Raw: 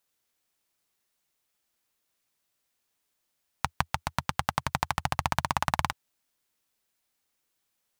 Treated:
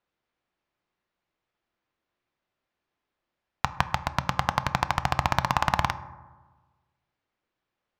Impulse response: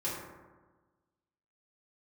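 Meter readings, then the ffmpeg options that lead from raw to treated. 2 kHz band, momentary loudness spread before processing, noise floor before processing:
+3.5 dB, 7 LU, -79 dBFS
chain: -filter_complex "[0:a]adynamicsmooth=sensitivity=6.5:basefreq=2.7k,equalizer=f=9.8k:w=1.9:g=-8.5,asplit=2[a][b];[1:a]atrim=start_sample=2205,lowpass=6.2k[c];[b][c]afir=irnorm=-1:irlink=0,volume=-15dB[d];[a][d]amix=inputs=2:normalize=0,volume=2.5dB"

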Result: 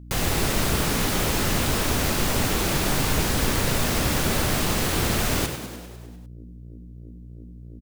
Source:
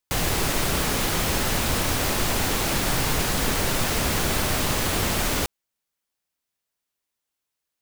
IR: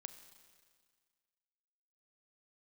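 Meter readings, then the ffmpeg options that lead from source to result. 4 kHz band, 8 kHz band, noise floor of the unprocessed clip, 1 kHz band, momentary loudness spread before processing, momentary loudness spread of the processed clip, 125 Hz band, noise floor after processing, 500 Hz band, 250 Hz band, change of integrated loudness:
-0.5 dB, -0.5 dB, -84 dBFS, -0.5 dB, 0 LU, 4 LU, +2.5 dB, -42 dBFS, +1.0 dB, +2.5 dB, 0.0 dB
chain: -filter_complex "[0:a]asplit=2[a][b];[b]acrusher=samples=40:mix=1:aa=0.000001,volume=-10dB[c];[a][c]amix=inputs=2:normalize=0,aeval=exprs='val(0)+0.0112*(sin(2*PI*60*n/s)+sin(2*PI*2*60*n/s)/2+sin(2*PI*3*60*n/s)/3+sin(2*PI*4*60*n/s)/4+sin(2*PI*5*60*n/s)/5)':c=same,asplit=9[d][e][f][g][h][i][j][k][l];[e]adelay=100,afreqshift=57,volume=-9dB[m];[f]adelay=200,afreqshift=114,volume=-12.9dB[n];[g]adelay=300,afreqshift=171,volume=-16.8dB[o];[h]adelay=400,afreqshift=228,volume=-20.6dB[p];[i]adelay=500,afreqshift=285,volume=-24.5dB[q];[j]adelay=600,afreqshift=342,volume=-28.4dB[r];[k]adelay=700,afreqshift=399,volume=-32.3dB[s];[l]adelay=800,afreqshift=456,volume=-36.1dB[t];[d][m][n][o][p][q][r][s][t]amix=inputs=9:normalize=0,volume=-1.5dB"

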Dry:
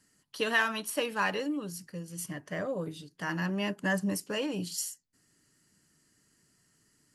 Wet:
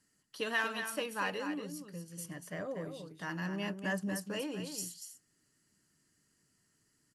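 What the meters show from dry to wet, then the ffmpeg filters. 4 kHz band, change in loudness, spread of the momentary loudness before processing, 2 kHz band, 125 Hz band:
-5.5 dB, -5.5 dB, 12 LU, -5.5 dB, -5.0 dB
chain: -af "aecho=1:1:237:0.398,volume=-6dB"

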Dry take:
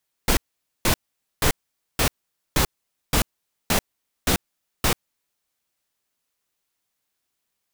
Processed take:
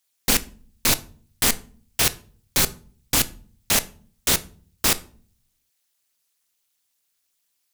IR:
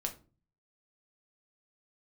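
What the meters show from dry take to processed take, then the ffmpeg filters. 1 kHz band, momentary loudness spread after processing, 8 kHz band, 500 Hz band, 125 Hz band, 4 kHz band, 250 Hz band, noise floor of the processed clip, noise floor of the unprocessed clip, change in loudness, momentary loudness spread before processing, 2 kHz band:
-2.5 dB, 5 LU, +6.5 dB, -3.0 dB, -4.5 dB, +4.0 dB, -2.0 dB, -73 dBFS, -79 dBFS, +3.5 dB, 5 LU, +1.0 dB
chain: -filter_complex "[0:a]highshelf=f=2.2k:g=11.5,tremolo=f=240:d=1,asplit=2[a][b];[1:a]atrim=start_sample=2205,asetrate=30429,aresample=44100[c];[b][c]afir=irnorm=-1:irlink=0,volume=-9.5dB[d];[a][d]amix=inputs=2:normalize=0,volume=-3dB"

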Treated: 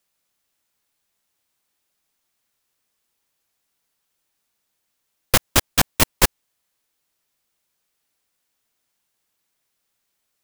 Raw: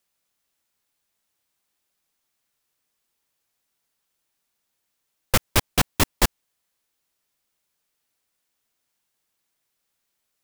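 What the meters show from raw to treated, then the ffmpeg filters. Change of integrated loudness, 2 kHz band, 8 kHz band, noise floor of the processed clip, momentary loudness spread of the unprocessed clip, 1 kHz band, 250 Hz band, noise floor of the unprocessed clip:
+4.0 dB, +3.5 dB, +5.0 dB, -75 dBFS, 3 LU, +2.5 dB, +1.0 dB, -78 dBFS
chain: -af "aeval=exprs='0.708*(cos(1*acos(clip(val(0)/0.708,-1,1)))-cos(1*PI/2))+0.158*(cos(7*acos(clip(val(0)/0.708,-1,1)))-cos(7*PI/2))':c=same,acontrast=84"

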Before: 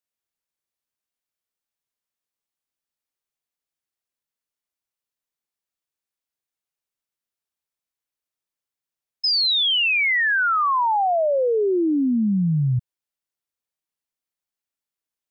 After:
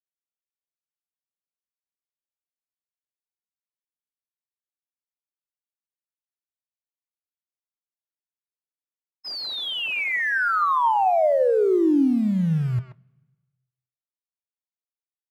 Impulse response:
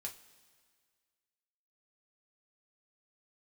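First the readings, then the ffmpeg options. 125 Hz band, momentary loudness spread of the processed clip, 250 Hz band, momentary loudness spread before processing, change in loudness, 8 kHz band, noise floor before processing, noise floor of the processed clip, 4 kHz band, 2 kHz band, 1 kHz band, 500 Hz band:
-2.5 dB, 10 LU, 0.0 dB, 5 LU, -2.0 dB, n/a, under -85 dBFS, under -85 dBFS, -10.0 dB, -4.0 dB, -0.5 dB, +1.0 dB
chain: -filter_complex "[0:a]acrusher=bits=5:mode=log:mix=0:aa=0.000001,agate=range=-33dB:threshold=-13dB:ratio=3:detection=peak,equalizer=f=680:t=o:w=2.5:g=9.5,acompressor=threshold=-24dB:ratio=6,asplit=2[a][b];[b]adelay=130,highpass=300,lowpass=3.4k,asoftclip=type=hard:threshold=-25.5dB,volume=-6dB[c];[a][c]amix=inputs=2:normalize=0,aresample=32000,aresample=44100,highshelf=f=2.1k:g=-10,asplit=2[d][e];[1:a]atrim=start_sample=2205,asetrate=61740,aresample=44100,lowpass=3.4k[f];[e][f]afir=irnorm=-1:irlink=0,volume=-3.5dB[g];[d][g]amix=inputs=2:normalize=0,volume=4.5dB"

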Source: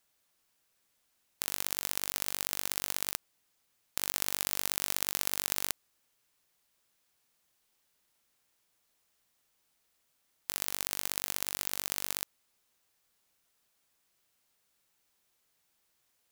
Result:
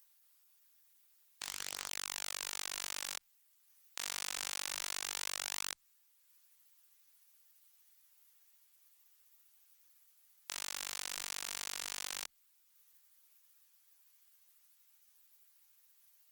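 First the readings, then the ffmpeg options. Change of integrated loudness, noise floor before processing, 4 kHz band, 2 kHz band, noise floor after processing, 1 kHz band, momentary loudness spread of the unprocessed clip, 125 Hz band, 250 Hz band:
-7.0 dB, -76 dBFS, -3.0 dB, -3.0 dB, -71 dBFS, -4.0 dB, 7 LU, -15.0 dB, -12.0 dB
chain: -filter_complex "[0:a]aeval=exprs='if(lt(val(0),0),0.708*val(0),val(0))':c=same,highpass=960,aemphasis=mode=production:type=50fm,acrossover=split=9200[a][b];[b]acompressor=threshold=-31dB:ratio=4:attack=1:release=60[c];[a][c]amix=inputs=2:normalize=0,highshelf=f=5.1k:g=-7,acompressor=mode=upward:threshold=-58dB:ratio=2.5,flanger=delay=17:depth=7.9:speed=0.13,aeval=exprs='0.266*(cos(1*acos(clip(val(0)/0.266,-1,1)))-cos(1*PI/2))+0.00188*(cos(4*acos(clip(val(0)/0.266,-1,1)))-cos(4*PI/2))+0.0422*(cos(5*acos(clip(val(0)/0.266,-1,1)))-cos(5*PI/2))+0.00473*(cos(8*acos(clip(val(0)/0.266,-1,1)))-cos(8*PI/2))':c=same,volume=-3.5dB" -ar 48000 -c:a libopus -b:a 16k

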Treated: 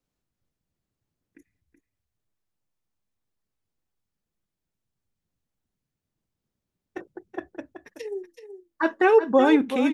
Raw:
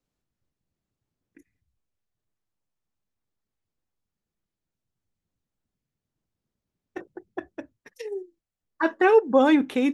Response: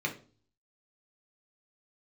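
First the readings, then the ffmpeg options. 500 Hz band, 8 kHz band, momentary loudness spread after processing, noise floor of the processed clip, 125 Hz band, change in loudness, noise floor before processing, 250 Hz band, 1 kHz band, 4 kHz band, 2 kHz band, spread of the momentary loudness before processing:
+0.5 dB, n/a, 21 LU, -85 dBFS, 0.0 dB, 0.0 dB, under -85 dBFS, 0.0 dB, +0.5 dB, 0.0 dB, +0.5 dB, 21 LU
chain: -af "aecho=1:1:377:0.299"

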